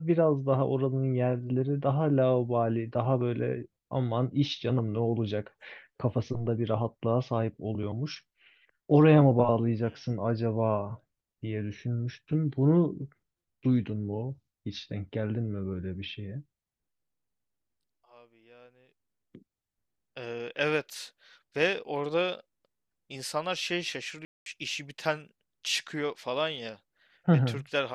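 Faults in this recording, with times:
24.25–24.46 gap 0.212 s

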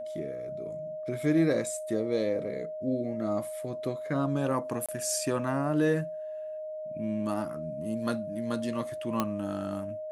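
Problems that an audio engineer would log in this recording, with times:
tone 620 Hz -35 dBFS
4.86–4.89 gap 26 ms
9.2 pop -13 dBFS

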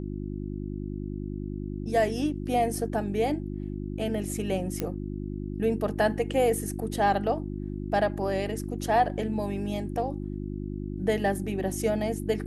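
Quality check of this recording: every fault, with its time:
hum 50 Hz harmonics 7 -34 dBFS
4.8 pop -14 dBFS

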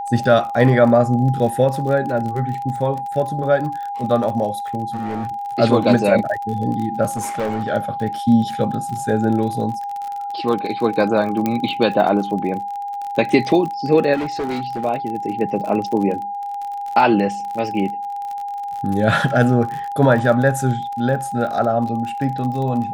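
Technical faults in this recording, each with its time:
crackle 42/s -26 dBFS
tone 810 Hz -24 dBFS
4.93–5.3 clipped -21 dBFS
7.16–7.69 clipped -18 dBFS
11.46 pop -7 dBFS
14.14–14.85 clipped -19.5 dBFS

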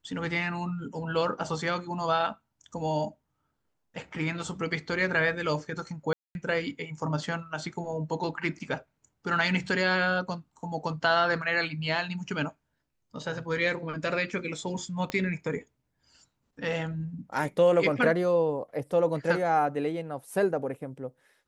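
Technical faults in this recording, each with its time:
6.13–6.35 gap 0.221 s
15.1 pop -17 dBFS

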